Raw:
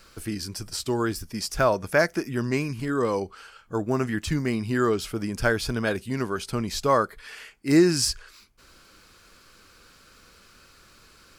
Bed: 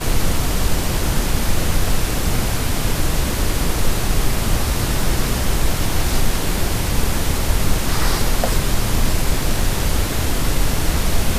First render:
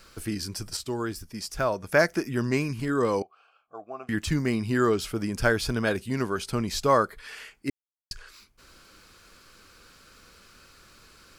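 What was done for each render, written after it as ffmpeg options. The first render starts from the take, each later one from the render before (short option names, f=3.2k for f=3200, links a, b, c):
-filter_complex "[0:a]asettb=1/sr,asplit=3[a][b][c];[a]atrim=end=3.224[d];[b]atrim=start=3.22:end=4.09,asetpts=PTS-STARTPTS,afade=t=in:d=0.004:c=qsin,afade=t=out:st=0.866:d=0.004:c=qsin,asplit=3[e][f][g];[e]bandpass=f=730:t=q:w=8,volume=0dB[h];[f]bandpass=f=1.09k:t=q:w=8,volume=-6dB[i];[g]bandpass=f=2.44k:t=q:w=8,volume=-9dB[j];[h][i][j]amix=inputs=3:normalize=0[k];[c]atrim=start=4.086[l];[d][k]acrossfade=d=0.004:c1=hsin:c2=qsin[m];[m][l]acrossfade=d=0.004:c1=qsin:c2=hsin,asplit=5[n][o][p][q][r];[n]atrim=end=0.772[s];[o]atrim=start=0.768:end=1.922,asetpts=PTS-STARTPTS,volume=-5dB[t];[p]atrim=start=1.918:end=7.7,asetpts=PTS-STARTPTS,afade=t=out:st=5.778:d=0.004:c=hsin[u];[q]atrim=start=7.7:end=8.11,asetpts=PTS-STARTPTS,volume=0[v];[r]atrim=start=8.11,asetpts=PTS-STARTPTS,afade=t=in:d=0.004:c=hsin[w];[s][t]acrossfade=d=0.004:c1=hsin:c2=hsin[x];[u][v][w]concat=n=3:v=0:a=1[y];[x][y]acrossfade=d=0.004:c1=hsin:c2=hsin"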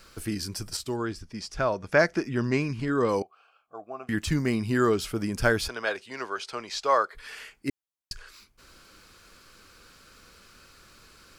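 -filter_complex "[0:a]asettb=1/sr,asplit=3[a][b][c];[a]atrim=end=0.964[d];[b]atrim=start=0.96:end=3.09,asetpts=PTS-STARTPTS,afade=t=in:d=0.004:c=qsin,afade=t=out:st=2.126:d=0.004:c=qsin,lowpass=5.7k[e];[c]atrim=start=3.086[f];[d][e]acrossfade=d=0.004:c1=hsin:c2=qsin[g];[g][f]acrossfade=d=0.004:c1=qsin:c2=hsin,asettb=1/sr,asplit=3[h][i][j];[h]atrim=end=5.684[k];[i]atrim=start=5.68:end=7.15,asetpts=PTS-STARTPTS,afade=t=in:d=0.004:c=qsin,afade=t=out:st=1.466:d=0.004:c=qsin,acrossover=split=440 7000:gain=0.0631 1 0.1[l][m][n];[l][m][n]amix=inputs=3:normalize=0[o];[j]atrim=start=7.146[p];[k][o]acrossfade=d=0.004:c1=hsin:c2=qsin[q];[q][p]acrossfade=d=0.004:c1=qsin:c2=hsin"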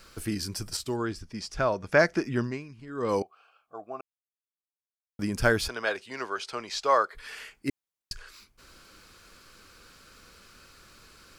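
-filter_complex "[0:a]asplit=5[a][b][c][d][e];[a]atrim=end=2.67,asetpts=PTS-STARTPTS,afade=t=out:st=2.39:d=0.28:c=qua:silence=0.16788[f];[b]atrim=start=2.67:end=2.85,asetpts=PTS-STARTPTS,volume=-15.5dB[g];[c]atrim=start=2.85:end=4.01,asetpts=PTS-STARTPTS,afade=t=in:d=0.28:c=qua:silence=0.16788,afade=t=out:st=1.156:d=0.004:c=hsin[h];[d]atrim=start=4.01:end=5.19,asetpts=PTS-STARTPTS,volume=0[i];[e]atrim=start=5.19,asetpts=PTS-STARTPTS,afade=t=in:d=0.004:c=hsin[j];[f][g][h][i][j]concat=n=5:v=0:a=1"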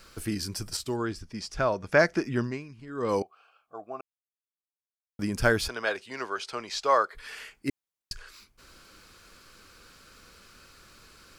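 -af anull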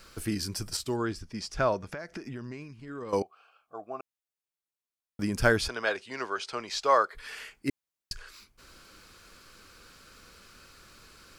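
-filter_complex "[0:a]asettb=1/sr,asplit=3[a][b][c];[a]atrim=end=1.824[d];[b]atrim=start=1.82:end=3.13,asetpts=PTS-STARTPTS,afade=t=in:d=0.004:c=qsin,afade=t=out:st=1.306:d=0.004:c=qsin,acompressor=threshold=-35dB:ratio=12:attack=3.2:release=140:knee=1:detection=peak[e];[c]atrim=start=3.126[f];[d][e]acrossfade=d=0.004:c1=hsin:c2=qsin[g];[g][f]acrossfade=d=0.004:c1=qsin:c2=hsin,asettb=1/sr,asplit=3[h][i][j];[h]atrim=end=5.574[k];[i]atrim=start=5.57:end=6.68,asetpts=PTS-STARTPTS,afade=t=in:d=0.004:c=qsin,afade=t=out:st=1.106:d=0.004:c=qsin,lowpass=10k[l];[j]atrim=start=6.676[m];[k][l]acrossfade=d=0.004:c1=hsin:c2=qsin[n];[n][m]acrossfade=d=0.004:c1=qsin:c2=hsin"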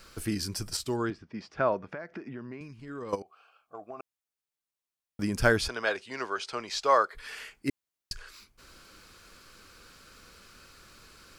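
-filter_complex "[0:a]asettb=1/sr,asplit=3[a][b][c];[a]atrim=end=1.104[d];[b]atrim=start=1.1:end=2.61,asetpts=PTS-STARTPTS,afade=t=in:d=0.004:c=qsin,afade=t=out:st=1.506:d=0.004:c=qsin,highpass=150,lowpass=2.4k[e];[c]atrim=start=2.606[f];[d][e]acrossfade=d=0.004:c1=hsin:c2=qsin[g];[g][f]acrossfade=d=0.004:c1=qsin:c2=hsin,asplit=3[h][i][j];[h]afade=t=out:st=3.14:d=0.02[k];[i]acompressor=threshold=-36dB:ratio=8:attack=3.2:release=140:knee=1:detection=peak,afade=t=in:st=3.14:d=0.02,afade=t=out:st=3.97:d=0.02[l];[j]afade=t=in:st=3.97:d=0.02[m];[k][l][m]amix=inputs=3:normalize=0"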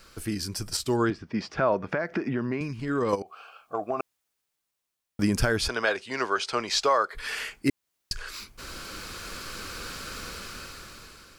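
-af "dynaudnorm=f=330:g=7:m=16.5dB,alimiter=limit=-12.5dB:level=0:latency=1:release=241"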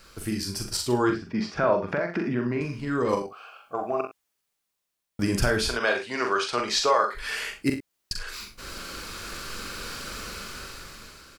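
-filter_complex "[0:a]asplit=2[a][b];[b]adelay=41,volume=-6dB[c];[a][c]amix=inputs=2:normalize=0,asplit=2[d][e];[e]aecho=0:1:46|64:0.282|0.266[f];[d][f]amix=inputs=2:normalize=0"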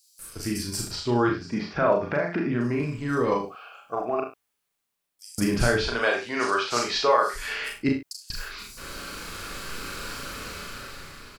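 -filter_complex "[0:a]asplit=2[a][b];[b]adelay=34,volume=-4.5dB[c];[a][c]amix=inputs=2:normalize=0,acrossover=split=5300[d][e];[d]adelay=190[f];[f][e]amix=inputs=2:normalize=0"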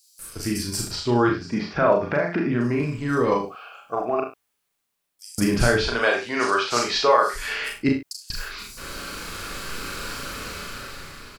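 -af "volume=3dB"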